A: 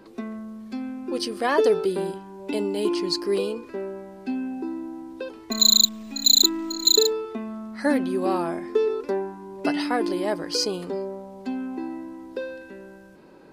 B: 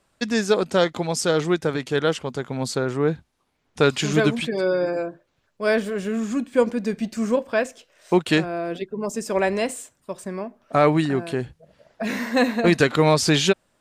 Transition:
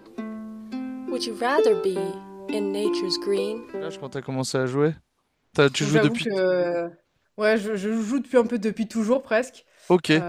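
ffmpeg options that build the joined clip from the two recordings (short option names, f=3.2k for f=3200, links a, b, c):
-filter_complex "[0:a]apad=whole_dur=10.28,atrim=end=10.28,atrim=end=4.35,asetpts=PTS-STARTPTS[a];[1:a]atrim=start=1.97:end=8.5,asetpts=PTS-STARTPTS[b];[a][b]acrossfade=d=0.6:c1=tri:c2=tri"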